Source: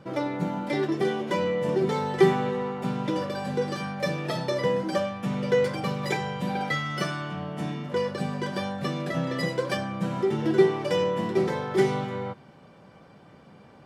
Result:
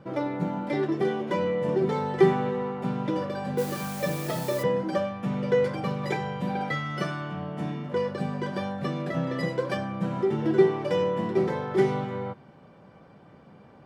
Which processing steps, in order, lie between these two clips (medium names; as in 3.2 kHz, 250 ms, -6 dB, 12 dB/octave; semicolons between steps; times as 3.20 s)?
treble shelf 3 kHz -9.5 dB; 3.57–4.62 s: added noise white -42 dBFS